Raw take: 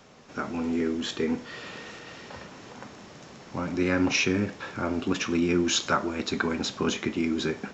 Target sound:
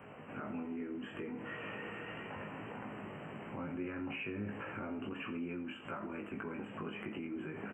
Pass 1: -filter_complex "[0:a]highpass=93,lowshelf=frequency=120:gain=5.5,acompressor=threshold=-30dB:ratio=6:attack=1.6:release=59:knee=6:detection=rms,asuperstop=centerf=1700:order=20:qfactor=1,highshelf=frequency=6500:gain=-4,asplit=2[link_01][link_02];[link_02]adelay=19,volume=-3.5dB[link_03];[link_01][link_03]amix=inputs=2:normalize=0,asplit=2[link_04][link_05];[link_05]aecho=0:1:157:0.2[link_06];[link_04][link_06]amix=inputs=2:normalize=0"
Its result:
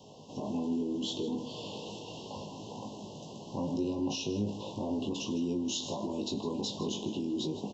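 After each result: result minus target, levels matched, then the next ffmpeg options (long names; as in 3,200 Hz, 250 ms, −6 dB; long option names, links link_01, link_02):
2,000 Hz band −17.0 dB; echo 70 ms late; downward compressor: peak gain reduction −8.5 dB
-filter_complex "[0:a]highpass=93,lowshelf=frequency=120:gain=5.5,acompressor=threshold=-30dB:ratio=6:attack=1.6:release=59:knee=6:detection=rms,asuperstop=centerf=5000:order=20:qfactor=1,highshelf=frequency=6500:gain=-4,asplit=2[link_01][link_02];[link_02]adelay=19,volume=-3.5dB[link_03];[link_01][link_03]amix=inputs=2:normalize=0,asplit=2[link_04][link_05];[link_05]aecho=0:1:157:0.2[link_06];[link_04][link_06]amix=inputs=2:normalize=0"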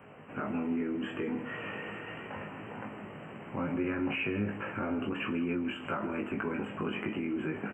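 echo 70 ms late; downward compressor: peak gain reduction −8.5 dB
-filter_complex "[0:a]highpass=93,lowshelf=frequency=120:gain=5.5,acompressor=threshold=-30dB:ratio=6:attack=1.6:release=59:knee=6:detection=rms,asuperstop=centerf=5000:order=20:qfactor=1,highshelf=frequency=6500:gain=-4,asplit=2[link_01][link_02];[link_02]adelay=19,volume=-3.5dB[link_03];[link_01][link_03]amix=inputs=2:normalize=0,asplit=2[link_04][link_05];[link_05]aecho=0:1:87:0.2[link_06];[link_04][link_06]amix=inputs=2:normalize=0"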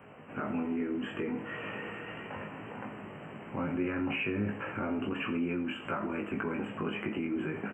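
downward compressor: peak gain reduction −8.5 dB
-filter_complex "[0:a]highpass=93,lowshelf=frequency=120:gain=5.5,acompressor=threshold=-40dB:ratio=6:attack=1.6:release=59:knee=6:detection=rms,asuperstop=centerf=5000:order=20:qfactor=1,highshelf=frequency=6500:gain=-4,asplit=2[link_01][link_02];[link_02]adelay=19,volume=-3.5dB[link_03];[link_01][link_03]amix=inputs=2:normalize=0,asplit=2[link_04][link_05];[link_05]aecho=0:1:87:0.2[link_06];[link_04][link_06]amix=inputs=2:normalize=0"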